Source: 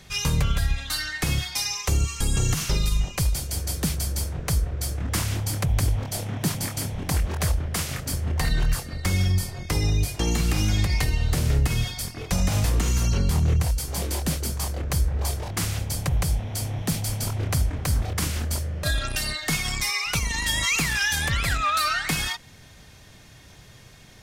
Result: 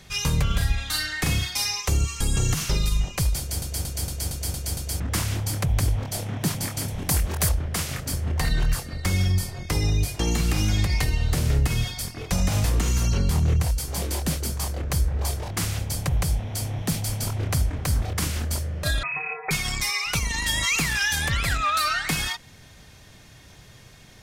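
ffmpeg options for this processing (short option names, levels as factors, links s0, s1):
-filter_complex "[0:a]asettb=1/sr,asplit=3[s0][s1][s2];[s0]atrim=end=0.474[s3];[s1]atrim=start=0.47:end=1.8,asetpts=PTS-STARTPTS,afade=t=in:d=0.004:c=qsin,afade=t=out:st=1.326:d=0.004:c=qsin,asplit=2[s4][s5];[s5]adelay=39,volume=0.631[s6];[s4][s6]amix=inputs=2:normalize=0,atrim=end_sample=58653[s7];[s2]atrim=start=1.796[s8];[s3][s7]acrossfade=d=0.004:c1=hsin:c2=qsin[s9];[s9][s8]acrossfade=d=0.004:c1=qsin:c2=hsin,asettb=1/sr,asplit=3[s10][s11][s12];[s10]atrim=end=6.884[s13];[s11]atrim=start=6.88:end=7.49,asetpts=PTS-STARTPTS,afade=t=in:d=0.004:c=qsin,afade=t=out:st=0.606:d=0.004:c=qsin,highshelf=f=7000:g=11[s14];[s12]atrim=start=7.486[s15];[s13][s14]acrossfade=d=0.004:c1=hsin:c2=qsin[s16];[s16][s15]acrossfade=d=0.004:c1=qsin:c2=hsin,asettb=1/sr,asplit=3[s17][s18][s19];[s17]atrim=end=19.034[s20];[s18]atrim=start=19.03:end=19.51,asetpts=PTS-STARTPTS,afade=t=in:d=0.004:c=qsin,afade=t=out:st=0.476:d=0.004:c=qsin,lowpass=f=2200:t=q:w=0.5098,lowpass=f=2200:t=q:w=0.6013,lowpass=f=2200:t=q:w=0.9,lowpass=f=2200:t=q:w=2.563,afreqshift=-2600[s21];[s19]atrim=start=19.506[s22];[s20][s21]acrossfade=d=0.004:c1=hsin:c2=qsin[s23];[s23][s22]acrossfade=d=0.004:c1=qsin:c2=hsin,asplit=8[s24][s25][s26][s27][s28][s29][s30][s31];[s24]atrim=end=3.622[s32];[s25]atrim=start=3.388:end=3.622[s33];[s26]atrim=start=3.388:end=3.622[s34];[s27]atrim=start=3.388:end=3.622[s35];[s28]atrim=start=3.388:end=3.622[s36];[s29]atrim=start=3.388:end=3.622[s37];[s30]atrim=start=3.388:end=3.622[s38];[s31]atrim=start=4.998[s39];[s32][s33]acrossfade=d=0.004:c1=hsin:c2=hsin[s40];[s40][s34]acrossfade=d=0.004:c1=hsin:c2=hsin[s41];[s41][s35]acrossfade=d=0.004:c1=hsin:c2=hsin[s42];[s42][s36]acrossfade=d=0.004:c1=hsin:c2=hsin[s43];[s43][s37]acrossfade=d=0.004:c1=hsin:c2=hsin[s44];[s44][s38]acrossfade=d=0.004:c1=hsin:c2=hsin[s45];[s45][s39]acrossfade=d=0.004:c1=hsin:c2=hsin"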